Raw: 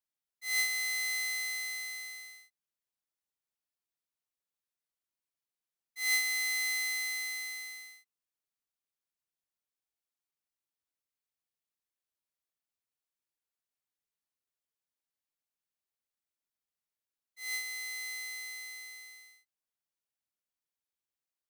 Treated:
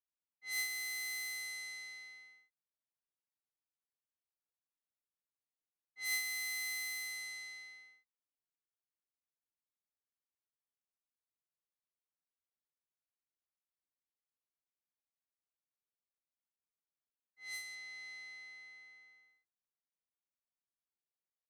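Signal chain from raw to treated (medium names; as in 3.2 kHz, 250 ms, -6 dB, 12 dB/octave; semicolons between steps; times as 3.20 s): treble shelf 12 kHz +4 dB, from 17.75 s -8.5 dB; level-controlled noise filter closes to 1.7 kHz, open at -30 dBFS; trim -7.5 dB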